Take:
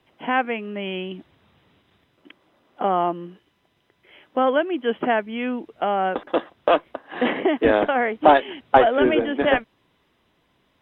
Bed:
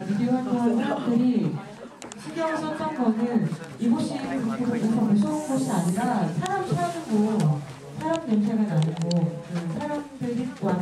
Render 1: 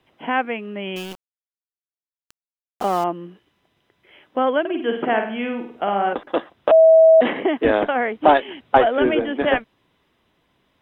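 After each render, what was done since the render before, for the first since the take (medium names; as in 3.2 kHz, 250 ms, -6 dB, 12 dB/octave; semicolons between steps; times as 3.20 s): 0.96–3.04 s: small samples zeroed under -30.5 dBFS; 4.60–6.13 s: flutter echo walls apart 8.6 m, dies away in 0.51 s; 6.71–7.21 s: bleep 646 Hz -7 dBFS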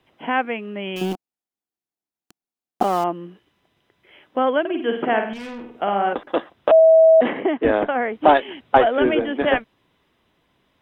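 1.01–2.83 s: small resonant body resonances 220/310/730 Hz, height 11 dB, ringing for 20 ms; 5.33–5.75 s: valve stage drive 31 dB, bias 0.45; 6.79–8.13 s: distance through air 250 m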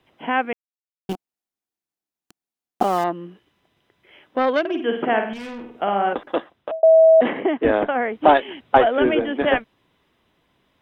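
0.53–1.09 s: mute; 2.98–4.83 s: self-modulated delay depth 0.11 ms; 6.29–6.83 s: fade out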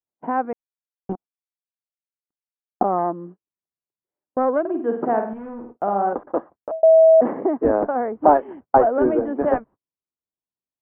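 gate -39 dBFS, range -37 dB; low-pass 1.2 kHz 24 dB/octave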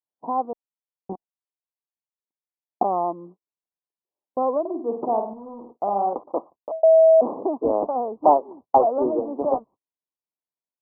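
steep low-pass 1.1 kHz 72 dB/octave; tilt EQ +3 dB/octave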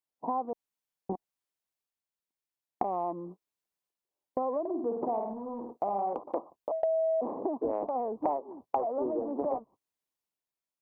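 compression 5:1, threshold -29 dBFS, peak gain reduction 16.5 dB; transient shaper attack 0 dB, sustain +4 dB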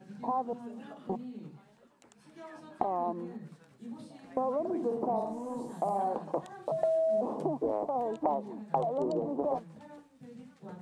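add bed -21.5 dB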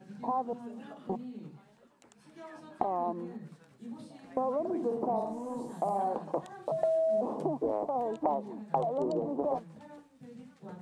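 no audible change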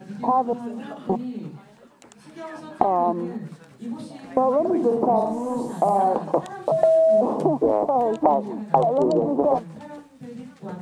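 trim +11.5 dB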